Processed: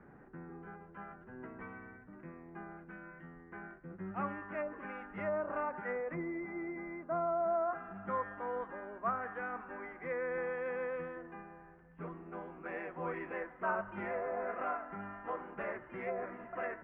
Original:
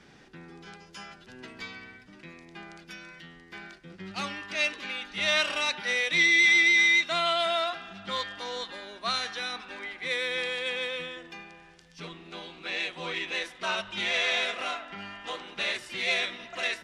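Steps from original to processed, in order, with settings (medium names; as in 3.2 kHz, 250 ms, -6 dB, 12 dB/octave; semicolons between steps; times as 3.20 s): low-pass that closes with the level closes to 760 Hz, closed at -22.5 dBFS; careless resampling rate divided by 6×, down filtered, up hold; inverse Chebyshev low-pass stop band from 4 kHz, stop band 50 dB; trim -1 dB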